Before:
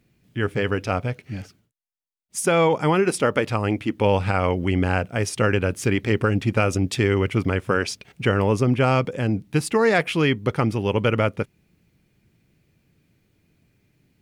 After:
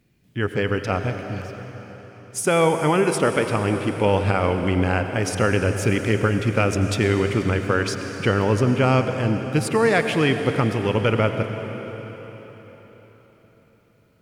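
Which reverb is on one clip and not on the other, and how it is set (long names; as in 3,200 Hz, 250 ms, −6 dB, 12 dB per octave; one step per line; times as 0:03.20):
dense smooth reverb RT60 4.5 s, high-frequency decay 0.9×, pre-delay 75 ms, DRR 6.5 dB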